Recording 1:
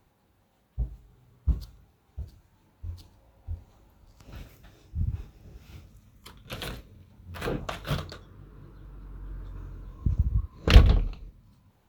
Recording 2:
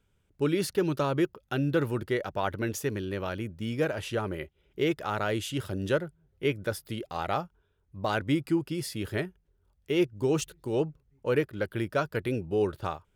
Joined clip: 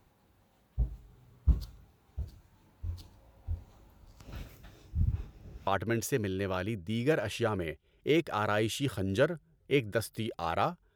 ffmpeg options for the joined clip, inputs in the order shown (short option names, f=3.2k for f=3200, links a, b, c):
-filter_complex "[0:a]asettb=1/sr,asplit=3[a][b][c];[a]atrim=end=5.124[d];[b]atrim=start=5.12:end=5.67,asetpts=PTS-STARTPTS,afade=t=in:d=0.004:c=qsin,afade=t=out:st=0.546:d=0.004:c=qsin,highshelf=f=4.3k:g=-5[e];[c]atrim=start=5.666[f];[d][e]acrossfade=d=0.004:c1=hsin:c2=qsin[g];[g][f]acrossfade=d=0.004:c1=qsin:c2=hsin,apad=whole_dur=10.95,atrim=end=10.95,atrim=end=5.672[h];[1:a]atrim=start=2.388:end=7.67[i];[h][i]acrossfade=d=0.004:c1=hsin:c2=hsin"